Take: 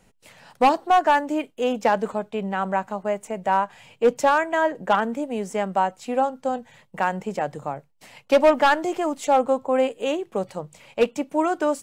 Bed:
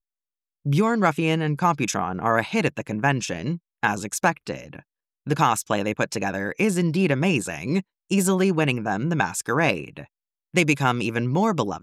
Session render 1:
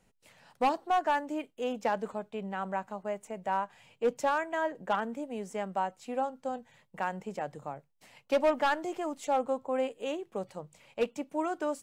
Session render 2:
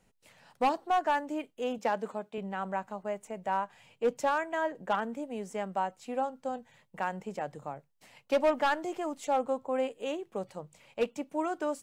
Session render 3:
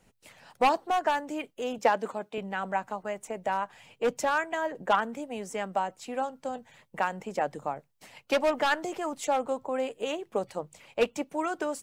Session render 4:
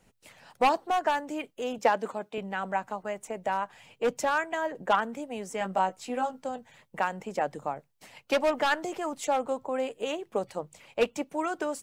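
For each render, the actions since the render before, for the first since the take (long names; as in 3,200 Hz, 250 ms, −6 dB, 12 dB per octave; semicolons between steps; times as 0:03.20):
level −10 dB
0:01.78–0:02.38: high-pass filter 160 Hz
mains-hum notches 60/120 Hz; harmonic and percussive parts rebalanced percussive +8 dB
0:05.59–0:06.43: double-tracking delay 16 ms −3 dB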